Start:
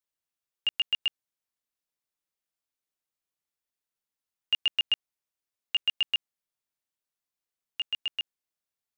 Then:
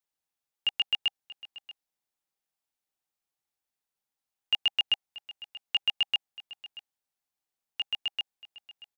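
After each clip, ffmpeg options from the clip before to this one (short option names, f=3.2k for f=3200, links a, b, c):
-af "equalizer=f=800:t=o:w=0.23:g=8.5,aecho=1:1:633:0.126"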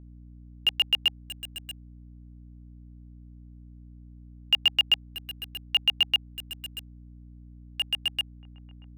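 -filter_complex "[0:a]acrossover=split=210|590|1800[a][b][c][d];[d]acrusher=bits=6:mix=0:aa=0.000001[e];[a][b][c][e]amix=inputs=4:normalize=0,aeval=exprs='val(0)+0.00316*(sin(2*PI*60*n/s)+sin(2*PI*2*60*n/s)/2+sin(2*PI*3*60*n/s)/3+sin(2*PI*4*60*n/s)/4+sin(2*PI*5*60*n/s)/5)':c=same,volume=4dB"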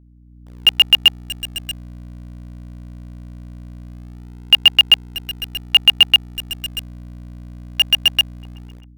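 -filter_complex "[0:a]dynaudnorm=f=130:g=7:m=12dB,asplit=2[a][b];[b]acrusher=bits=3:dc=4:mix=0:aa=0.000001,volume=-9dB[c];[a][c]amix=inputs=2:normalize=0,volume=-1dB"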